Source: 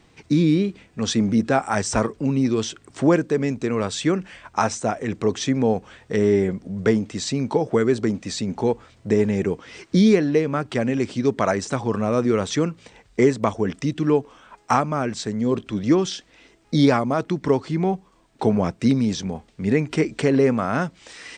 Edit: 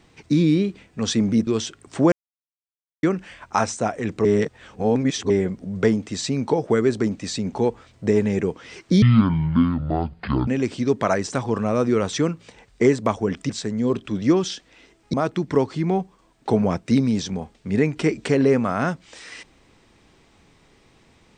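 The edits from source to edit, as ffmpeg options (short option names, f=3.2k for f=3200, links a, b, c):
-filter_complex "[0:a]asplit=10[a][b][c][d][e][f][g][h][i][j];[a]atrim=end=1.472[k];[b]atrim=start=2.498:end=3.15,asetpts=PTS-STARTPTS,afade=t=out:st=0.648:d=0.004:c=hsin[l];[c]atrim=start=3.15:end=4.06,asetpts=PTS-STARTPTS,volume=0[m];[d]atrim=start=4.06:end=5.282,asetpts=PTS-STARTPTS,afade=t=in:d=0.004:c=hsin[n];[e]atrim=start=5.278:end=6.332,asetpts=PTS-STARTPTS,areverse[o];[f]atrim=start=6.328:end=10.054[p];[g]atrim=start=10.05:end=10.85,asetpts=PTS-STARTPTS,asetrate=24255,aresample=44100,atrim=end_sample=64145,asetpts=PTS-STARTPTS[q];[h]atrim=start=10.846:end=13.872[r];[i]atrim=start=15.108:end=16.752[s];[j]atrim=start=17.068[t];[l][m][n]concat=n=3:v=0:a=1[u];[k][u]acrossfade=d=0.004:c1=hsin:c2=hsin[v];[v][o]acrossfade=d=0.004:c1=hsin:c2=hsin[w];[w][p]acrossfade=d=0.004:c1=hsin:c2=hsin[x];[x][q]acrossfade=d=0.004:c1=hsin:c2=hsin[y];[y][r]acrossfade=d=0.004:c1=hsin:c2=hsin[z];[z][s]acrossfade=d=0.004:c1=hsin:c2=hsin[aa];[aa][t]acrossfade=d=0.004:c1=hsin:c2=hsin"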